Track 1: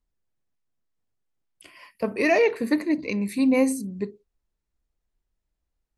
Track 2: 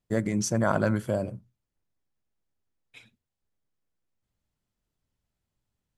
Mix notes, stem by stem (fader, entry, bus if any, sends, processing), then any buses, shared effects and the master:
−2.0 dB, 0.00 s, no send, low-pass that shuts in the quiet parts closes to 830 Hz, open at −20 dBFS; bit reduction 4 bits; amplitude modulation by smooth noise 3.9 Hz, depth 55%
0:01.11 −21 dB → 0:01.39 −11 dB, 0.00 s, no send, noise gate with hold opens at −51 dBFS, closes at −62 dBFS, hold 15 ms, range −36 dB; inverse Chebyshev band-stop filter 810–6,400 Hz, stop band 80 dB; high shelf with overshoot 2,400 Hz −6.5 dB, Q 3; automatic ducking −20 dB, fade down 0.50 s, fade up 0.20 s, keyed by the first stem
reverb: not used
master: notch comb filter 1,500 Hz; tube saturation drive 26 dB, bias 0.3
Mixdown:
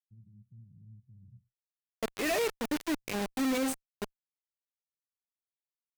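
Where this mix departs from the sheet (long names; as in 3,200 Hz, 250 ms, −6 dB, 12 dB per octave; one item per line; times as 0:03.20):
stem 1: missing low-pass that shuts in the quiet parts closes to 830 Hz, open at −20 dBFS
master: missing notch comb filter 1,500 Hz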